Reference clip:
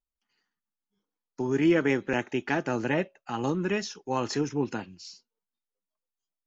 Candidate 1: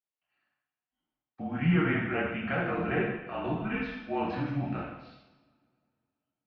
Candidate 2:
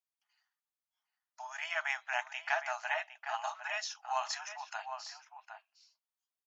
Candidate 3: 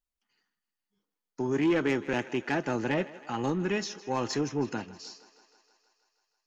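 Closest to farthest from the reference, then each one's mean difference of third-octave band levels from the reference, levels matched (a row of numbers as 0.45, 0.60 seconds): 3, 1, 2; 3.5, 9.5, 16.0 decibels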